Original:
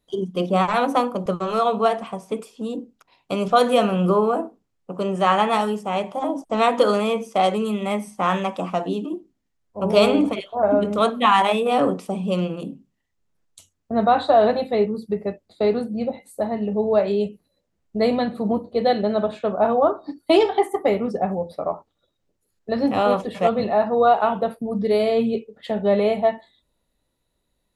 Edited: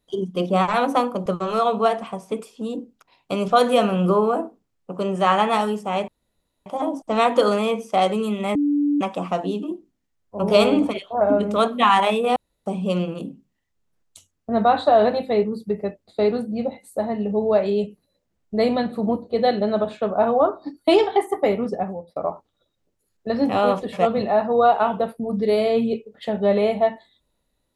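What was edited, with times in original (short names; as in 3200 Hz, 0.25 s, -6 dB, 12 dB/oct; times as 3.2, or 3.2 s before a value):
6.08 insert room tone 0.58 s
7.97–8.43 bleep 290 Hz -16.5 dBFS
11.78–12.08 room tone
21.09–21.58 fade out, to -20 dB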